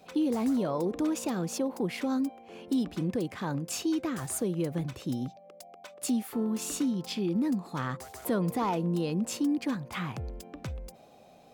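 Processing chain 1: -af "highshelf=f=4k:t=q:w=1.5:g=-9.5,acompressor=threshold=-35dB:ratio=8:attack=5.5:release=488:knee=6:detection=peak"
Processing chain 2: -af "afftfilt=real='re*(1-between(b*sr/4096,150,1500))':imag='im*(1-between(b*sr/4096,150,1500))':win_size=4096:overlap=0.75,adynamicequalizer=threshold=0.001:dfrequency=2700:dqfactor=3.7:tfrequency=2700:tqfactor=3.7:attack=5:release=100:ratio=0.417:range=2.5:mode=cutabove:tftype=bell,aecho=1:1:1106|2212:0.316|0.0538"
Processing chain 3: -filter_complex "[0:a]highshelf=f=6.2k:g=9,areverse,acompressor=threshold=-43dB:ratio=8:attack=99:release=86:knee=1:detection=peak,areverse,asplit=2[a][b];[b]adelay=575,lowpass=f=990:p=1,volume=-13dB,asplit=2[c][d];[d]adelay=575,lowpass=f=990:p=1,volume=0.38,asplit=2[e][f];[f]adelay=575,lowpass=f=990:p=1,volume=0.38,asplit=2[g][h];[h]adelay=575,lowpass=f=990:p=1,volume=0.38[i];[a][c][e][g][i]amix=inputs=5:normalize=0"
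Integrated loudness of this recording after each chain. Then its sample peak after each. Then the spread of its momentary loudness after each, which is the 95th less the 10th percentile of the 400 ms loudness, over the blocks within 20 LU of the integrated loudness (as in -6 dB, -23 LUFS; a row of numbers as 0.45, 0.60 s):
-41.0, -41.0, -40.0 LUFS; -27.0, -19.5, -24.5 dBFS; 6, 12, 6 LU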